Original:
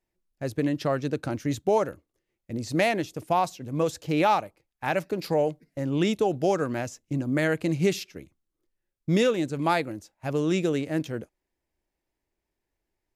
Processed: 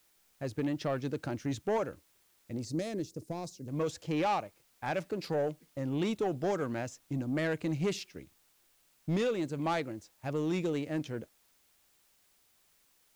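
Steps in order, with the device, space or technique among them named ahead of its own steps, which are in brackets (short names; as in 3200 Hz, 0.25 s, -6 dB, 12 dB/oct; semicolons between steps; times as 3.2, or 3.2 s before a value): compact cassette (soft clip -19.5 dBFS, distortion -15 dB; LPF 8400 Hz; wow and flutter; white noise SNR 34 dB); 2.65–3.68 band shelf 1500 Hz -13 dB 2.7 oct; gain -5 dB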